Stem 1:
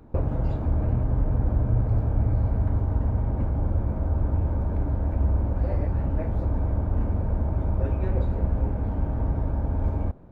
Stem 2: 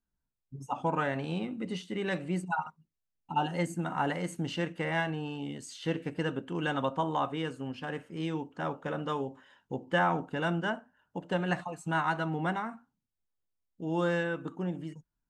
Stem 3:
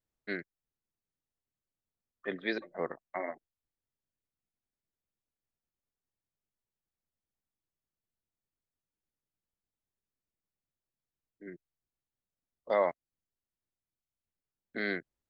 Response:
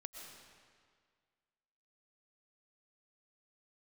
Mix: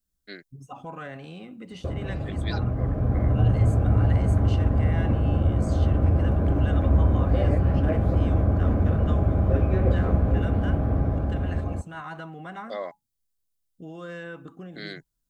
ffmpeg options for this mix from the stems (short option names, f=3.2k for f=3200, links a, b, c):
-filter_complex "[0:a]dynaudnorm=f=350:g=7:m=11.5dB,highpass=70,adelay=1700,volume=-3.5dB[a];[1:a]lowshelf=f=150:g=9,alimiter=limit=-24dB:level=0:latency=1:release=46,acrossover=split=470[b][c];[b]acompressor=threshold=-37dB:ratio=6[d];[d][c]amix=inputs=2:normalize=0,volume=-3dB[e];[2:a]aexciter=amount=4.6:drive=3.8:freq=3.2k,volume=-5.5dB[f];[a][e][f]amix=inputs=3:normalize=0,asuperstop=centerf=900:order=20:qfactor=7.6"